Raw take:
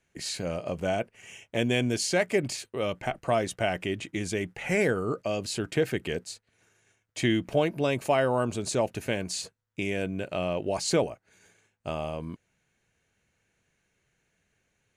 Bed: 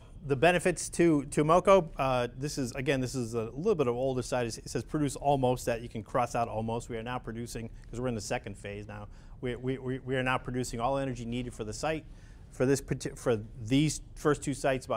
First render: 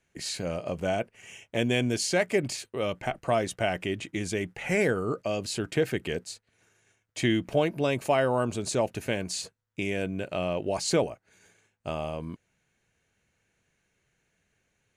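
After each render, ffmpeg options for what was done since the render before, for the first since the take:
-af anull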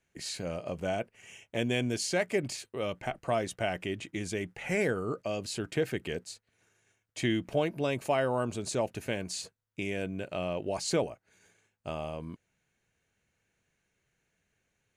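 -af "volume=0.631"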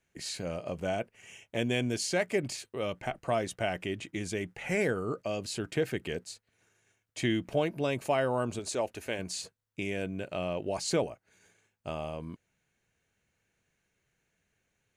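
-filter_complex "[0:a]asettb=1/sr,asplit=3[s0][s1][s2];[s0]atrim=end=8.594[s3];[s1]atrim=start=8.59:end=9.19,asetpts=PTS-STARTPTS,afade=t=in:d=0.004:c=qsin,afade=t=out:st=0.596:d=0.004:c=qsin,equalizer=f=150:w=1.5:g=-14[s4];[s2]atrim=start=9.186[s5];[s3][s4]acrossfade=d=0.004:c1=hsin:c2=qsin[s6];[s6][s5]acrossfade=d=0.004:c1=qsin:c2=hsin"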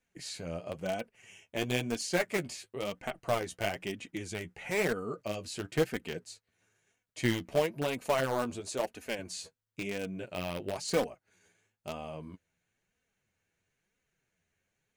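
-filter_complex "[0:a]asplit=2[s0][s1];[s1]acrusher=bits=3:mix=0:aa=0.000001,volume=0.447[s2];[s0][s2]amix=inputs=2:normalize=0,flanger=delay=3.9:depth=8.5:regen=23:speed=1:shape=sinusoidal"

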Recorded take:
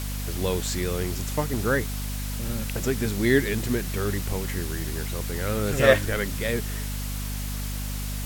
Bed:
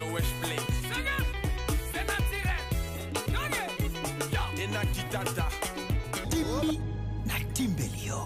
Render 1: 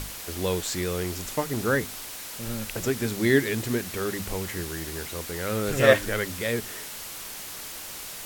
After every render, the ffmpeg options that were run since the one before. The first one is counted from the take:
-af "bandreject=f=50:t=h:w=6,bandreject=f=100:t=h:w=6,bandreject=f=150:t=h:w=6,bandreject=f=200:t=h:w=6,bandreject=f=250:t=h:w=6"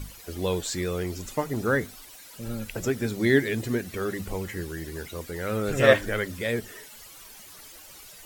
-af "afftdn=nr=13:nf=-39"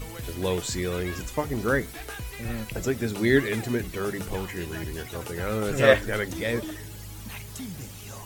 -filter_complex "[1:a]volume=0.398[s0];[0:a][s0]amix=inputs=2:normalize=0"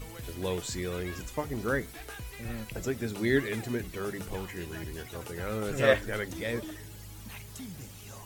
-af "volume=0.531"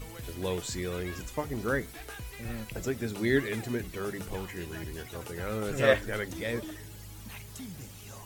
-filter_complex "[0:a]asettb=1/sr,asplit=3[s0][s1][s2];[s0]atrim=end=2.234[s3];[s1]atrim=start=2.23:end=2.89,asetpts=PTS-STARTPTS,afade=t=in:d=0.004:c=qsin,afade=t=out:st=0.656:d=0.004:c=qsin,acrusher=bits=6:mode=log:mix=0:aa=0.000001[s4];[s2]atrim=start=2.886[s5];[s3][s4]acrossfade=d=0.004:c1=hsin:c2=qsin[s6];[s6][s5]acrossfade=d=0.004:c1=qsin:c2=hsin"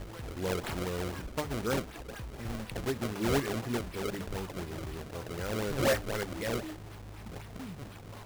-af "acrusher=samples=29:mix=1:aa=0.000001:lfo=1:lforange=46.4:lforate=4,asoftclip=type=tanh:threshold=0.0891"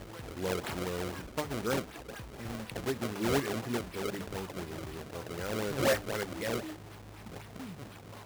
-af "highpass=f=110:p=1"

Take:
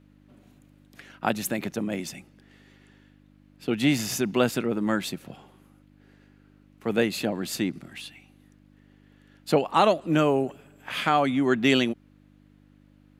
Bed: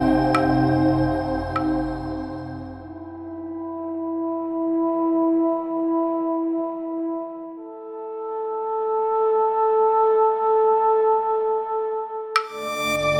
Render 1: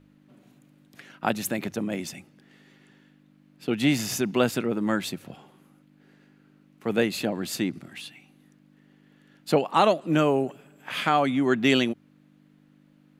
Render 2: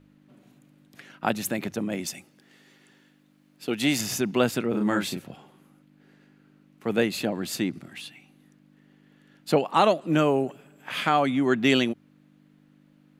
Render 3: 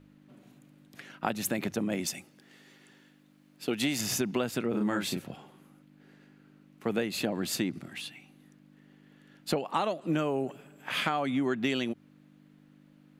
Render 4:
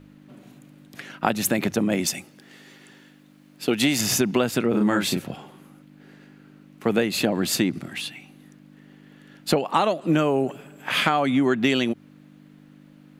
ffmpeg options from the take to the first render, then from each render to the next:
-af "bandreject=f=50:t=h:w=4,bandreject=f=100:t=h:w=4"
-filter_complex "[0:a]asettb=1/sr,asplit=3[s0][s1][s2];[s0]atrim=end=2.064[s3];[s1]atrim=start=2.06:end=4.01,asetpts=PTS-STARTPTS,afade=t=in:d=0.004:c=qsin,afade=t=out:st=1.946:d=0.004:c=qsin,bass=f=250:g=-6,treble=f=4000:g=6[s4];[s2]atrim=start=4.006[s5];[s3][s4]acrossfade=d=0.004:c1=hsin:c2=qsin[s6];[s6][s5]acrossfade=d=0.004:c1=qsin:c2=hsin,asettb=1/sr,asplit=3[s7][s8][s9];[s7]atrim=end=4.704[s10];[s8]atrim=start=4.7:end=5.21,asetpts=PTS-STARTPTS,afade=t=in:d=0.004:c=qsin,afade=t=out:st=0.506:d=0.004:c=qsin,asplit=2[s11][s12];[s12]adelay=34,volume=0.668[s13];[s11][s13]amix=inputs=2:normalize=0,atrim=end_sample=22491[s14];[s9]atrim=start=5.206[s15];[s10][s14]acrossfade=d=0.004:c1=hsin:c2=qsin[s16];[s16][s15]acrossfade=d=0.004:c1=qsin:c2=hsin"
-af "acompressor=threshold=0.0562:ratio=10"
-af "volume=2.66"

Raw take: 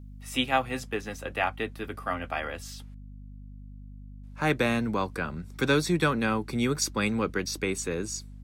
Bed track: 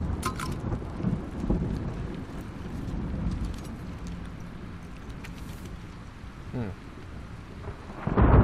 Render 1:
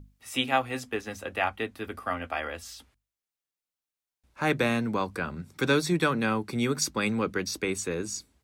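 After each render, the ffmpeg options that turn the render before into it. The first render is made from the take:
-af "bandreject=f=50:t=h:w=6,bandreject=f=100:t=h:w=6,bandreject=f=150:t=h:w=6,bandreject=f=200:t=h:w=6,bandreject=f=250:t=h:w=6"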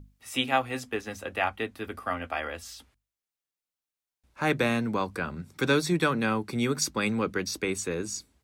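-af anull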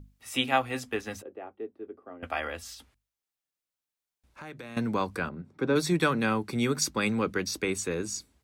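-filter_complex "[0:a]asettb=1/sr,asplit=3[s0][s1][s2];[s0]atrim=end=1.224[s3];[s1]atrim=start=1.22:end=2.23,asetpts=PTS-STARTPTS,afade=t=in:d=0.004:c=qsin,afade=t=out:st=1.006:d=0.004:c=qsin,bandpass=f=380:t=q:w=3.6[s4];[s2]atrim=start=2.226[s5];[s3][s4]acrossfade=d=0.004:c1=hsin:c2=qsin[s6];[s6][s5]acrossfade=d=0.004:c1=qsin:c2=hsin,asettb=1/sr,asplit=3[s7][s8][s9];[s7]atrim=end=2.744[s10];[s8]atrim=start=2.74:end=4.77,asetpts=PTS-STARTPTS,afade=t=in:d=0.004:c=qsin,afade=t=out:st=2.026:d=0.004:c=qsin,acompressor=threshold=0.00708:ratio=4:attack=3.2:release=140:knee=1:detection=peak[s11];[s9]atrim=start=4.766[s12];[s10][s11]acrossfade=d=0.004:c1=hsin:c2=qsin[s13];[s13][s12]acrossfade=d=0.004:c1=qsin:c2=hsin,asplit=3[s14][s15][s16];[s14]afade=t=out:st=5.28:d=0.02[s17];[s15]bandpass=f=360:t=q:w=0.54,afade=t=in:st=5.28:d=0.02,afade=t=out:st=5.75:d=0.02[s18];[s16]afade=t=in:st=5.75:d=0.02[s19];[s17][s18][s19]amix=inputs=3:normalize=0"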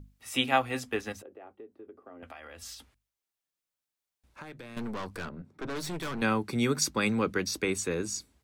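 -filter_complex "[0:a]asettb=1/sr,asplit=3[s0][s1][s2];[s0]atrim=end=1.124[s3];[s1]atrim=start=1.12:end=2.62,asetpts=PTS-STARTPTS,afade=t=in:d=0.004:c=qsin,afade=t=out:st=1.496:d=0.004:c=qsin,acompressor=threshold=0.00708:ratio=6:attack=3.2:release=140:knee=1:detection=peak[s4];[s2]atrim=start=2.616[s5];[s3][s4]acrossfade=d=0.004:c1=hsin:c2=qsin[s6];[s6][s5]acrossfade=d=0.004:c1=qsin:c2=hsin,asettb=1/sr,asplit=3[s7][s8][s9];[s7]atrim=end=4.434[s10];[s8]atrim=start=4.43:end=6.22,asetpts=PTS-STARTPTS,afade=t=in:d=0.004:c=qsin,afade=t=out:st=1.786:d=0.004:c=qsin,aeval=exprs='(tanh(44.7*val(0)+0.55)-tanh(0.55))/44.7':c=same[s11];[s9]atrim=start=6.216[s12];[s10][s11]acrossfade=d=0.004:c1=hsin:c2=qsin[s13];[s13][s12]acrossfade=d=0.004:c1=qsin:c2=hsin"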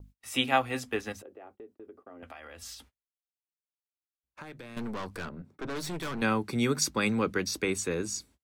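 -af "agate=range=0.0355:threshold=0.00178:ratio=16:detection=peak"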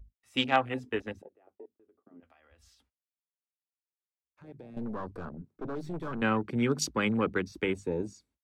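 -af "highshelf=f=8000:g=-10,afwtdn=0.0141"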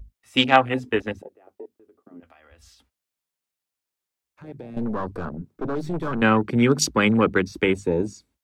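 -af "volume=2.99"

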